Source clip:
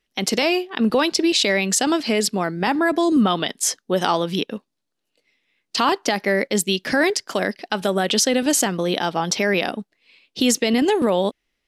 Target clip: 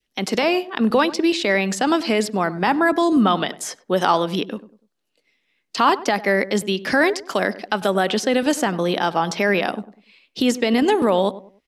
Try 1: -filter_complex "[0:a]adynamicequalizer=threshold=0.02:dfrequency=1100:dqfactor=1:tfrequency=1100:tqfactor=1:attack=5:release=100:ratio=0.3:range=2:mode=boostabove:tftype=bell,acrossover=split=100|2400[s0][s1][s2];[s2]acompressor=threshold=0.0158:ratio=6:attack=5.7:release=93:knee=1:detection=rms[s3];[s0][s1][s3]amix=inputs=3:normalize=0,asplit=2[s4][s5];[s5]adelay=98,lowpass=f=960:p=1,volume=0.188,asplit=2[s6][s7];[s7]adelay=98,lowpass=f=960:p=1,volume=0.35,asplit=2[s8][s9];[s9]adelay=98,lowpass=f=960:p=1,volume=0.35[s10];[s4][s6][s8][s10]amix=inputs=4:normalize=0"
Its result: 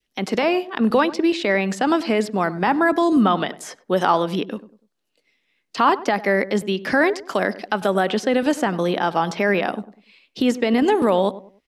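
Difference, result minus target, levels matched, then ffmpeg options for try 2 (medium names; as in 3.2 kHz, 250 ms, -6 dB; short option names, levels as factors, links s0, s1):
compression: peak gain reduction +7.5 dB
-filter_complex "[0:a]adynamicequalizer=threshold=0.02:dfrequency=1100:dqfactor=1:tfrequency=1100:tqfactor=1:attack=5:release=100:ratio=0.3:range=2:mode=boostabove:tftype=bell,acrossover=split=100|2400[s0][s1][s2];[s2]acompressor=threshold=0.0447:ratio=6:attack=5.7:release=93:knee=1:detection=rms[s3];[s0][s1][s3]amix=inputs=3:normalize=0,asplit=2[s4][s5];[s5]adelay=98,lowpass=f=960:p=1,volume=0.188,asplit=2[s6][s7];[s7]adelay=98,lowpass=f=960:p=1,volume=0.35,asplit=2[s8][s9];[s9]adelay=98,lowpass=f=960:p=1,volume=0.35[s10];[s4][s6][s8][s10]amix=inputs=4:normalize=0"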